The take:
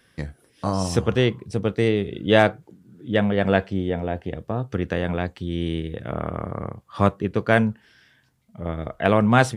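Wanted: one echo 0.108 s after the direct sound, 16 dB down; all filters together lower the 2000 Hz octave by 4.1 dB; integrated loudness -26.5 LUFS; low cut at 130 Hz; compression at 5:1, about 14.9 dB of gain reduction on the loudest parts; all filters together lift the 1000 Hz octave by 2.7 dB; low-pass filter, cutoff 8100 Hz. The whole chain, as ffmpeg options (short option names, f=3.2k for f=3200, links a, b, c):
-af "highpass=130,lowpass=8.1k,equalizer=f=1k:t=o:g=6,equalizer=f=2k:t=o:g=-8.5,acompressor=threshold=-28dB:ratio=5,aecho=1:1:108:0.158,volume=7dB"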